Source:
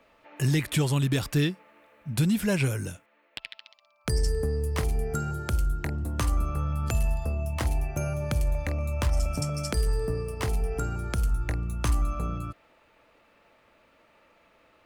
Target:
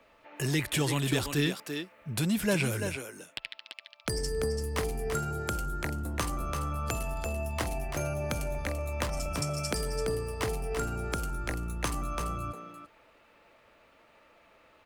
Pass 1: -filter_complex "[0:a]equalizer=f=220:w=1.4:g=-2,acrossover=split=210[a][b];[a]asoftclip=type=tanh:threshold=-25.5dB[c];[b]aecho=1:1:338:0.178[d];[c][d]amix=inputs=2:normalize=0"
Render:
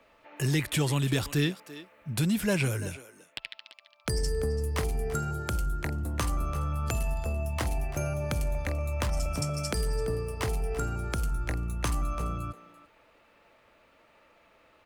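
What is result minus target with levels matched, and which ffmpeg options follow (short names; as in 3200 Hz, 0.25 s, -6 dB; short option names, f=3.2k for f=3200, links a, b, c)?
echo-to-direct -8 dB; soft clip: distortion -6 dB
-filter_complex "[0:a]equalizer=f=220:w=1.4:g=-2,acrossover=split=210[a][b];[a]asoftclip=type=tanh:threshold=-33dB[c];[b]aecho=1:1:338:0.473[d];[c][d]amix=inputs=2:normalize=0"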